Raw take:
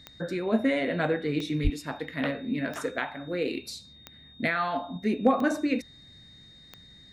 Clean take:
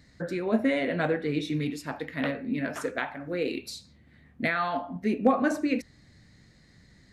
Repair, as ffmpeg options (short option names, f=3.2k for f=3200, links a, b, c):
-filter_complex "[0:a]adeclick=t=4,bandreject=f=3.7k:w=30,asplit=3[a][b][c];[a]afade=t=out:st=1.63:d=0.02[d];[b]highpass=f=140:w=0.5412,highpass=f=140:w=1.3066,afade=t=in:st=1.63:d=0.02,afade=t=out:st=1.75:d=0.02[e];[c]afade=t=in:st=1.75:d=0.02[f];[d][e][f]amix=inputs=3:normalize=0"